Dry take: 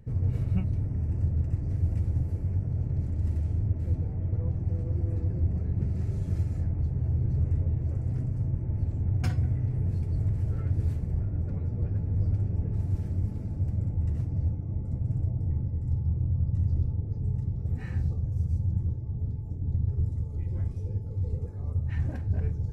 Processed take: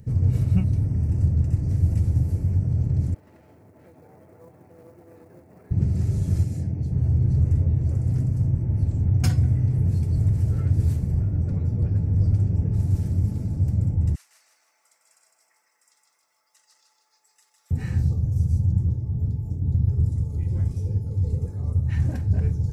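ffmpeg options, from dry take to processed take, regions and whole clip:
-filter_complex "[0:a]asettb=1/sr,asplit=3[a][b][c];[a]atrim=end=3.144[d];[b]atrim=start=3.14:end=5.71,asetpts=PTS-STARTPTS,afade=t=in:d=0.004:c=qsin,afade=t=out:st=2.566:d=0.004:c=qsin,acompressor=threshold=-27dB:ratio=3:attack=3.2:release=140:knee=1:detection=peak,highpass=640,lowpass=2k,acrusher=bits=8:mode=log:mix=0:aa=0.000001[e];[c]atrim=start=5.706[f];[d][e]acrossfade=d=0.004:c1=hsin:c2=qsin[g];[g][f]acrossfade=d=0.004:c1=qsin:c2=hsin,asettb=1/sr,asplit=3[h][i][j];[h]atrim=end=6.444[k];[i]atrim=start=6.44:end=6.92,asetpts=PTS-STARTPTS,afade=t=in:d=0.004:c=qsin,afade=t=out:st=0.476:d=0.004:c=qsin,highpass=110,equalizer=f=1.2k:t=o:w=0.84:g=-9[l];[j]atrim=start=6.916[m];[k][l]acrossfade=d=0.004:c1=hsin:c2=qsin[n];[n][m]acrossfade=d=0.004:c1=qsin:c2=hsin,asettb=1/sr,asplit=3[o][p][q];[o]atrim=end=14.154[r];[p]atrim=start=14.15:end=17.71,asetpts=PTS-STARTPTS,afade=t=in:d=0.004:c=qsin,afade=t=out:st=3.556:d=0.004:c=qsin,highpass=f=1.3k:w=0.5412,highpass=f=1.3k:w=1.3066,aecho=1:1:156|312|468|624|780|936:0.631|0.309|0.151|0.0742|0.0364|0.0178,atrim=end_sample=156996[s];[q]atrim=start=17.706[t];[r][s]acrossfade=d=0.004:c1=hsin:c2=qsin[u];[u][t]acrossfade=d=0.004:c1=qsin:c2=hsin,highpass=f=110:p=1,bass=f=250:g=7,treble=f=4k:g=11,volume=3.5dB"

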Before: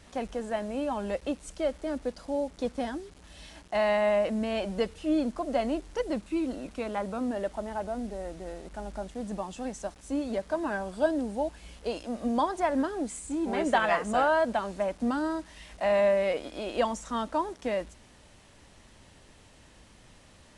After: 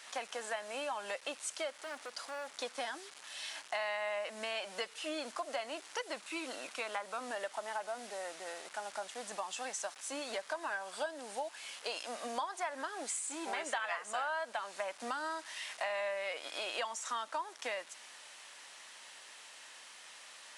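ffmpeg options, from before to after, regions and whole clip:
-filter_complex "[0:a]asettb=1/sr,asplit=3[a][b][c];[a]atrim=end=1.704[d];[b]atrim=start=1.7:end=2.52,asetpts=PTS-STARTPTS,afade=t=in:d=0.004:c=qsin,afade=t=out:st=0.816:d=0.004:c=qsin,acompressor=threshold=-34dB:ratio=3:attack=3.2:release=140:knee=1:detection=peak,asoftclip=type=hard:threshold=-36.5dB[e];[c]atrim=start=2.516[f];[d][e]acrossfade=d=0.004:c1=hsin:c2=qsin[g];[g][f]acrossfade=d=0.004:c1=qsin:c2=hsin,highpass=1.1k,acompressor=threshold=-43dB:ratio=5,volume=7.5dB"

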